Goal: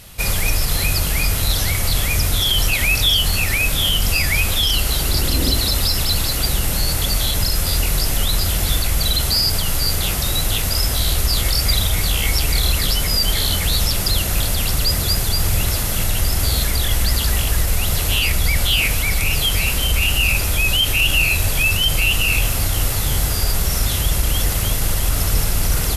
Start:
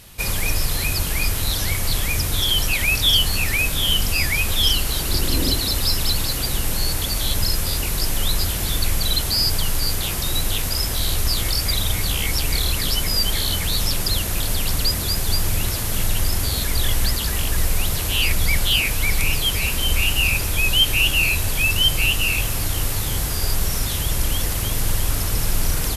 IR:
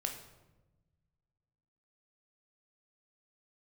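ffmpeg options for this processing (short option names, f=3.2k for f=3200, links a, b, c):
-filter_complex "[0:a]alimiter=limit=-11dB:level=0:latency=1:release=28,asplit=2[a][b];[1:a]atrim=start_sample=2205[c];[b][c]afir=irnorm=-1:irlink=0,volume=-5.5dB[d];[a][d]amix=inputs=2:normalize=0"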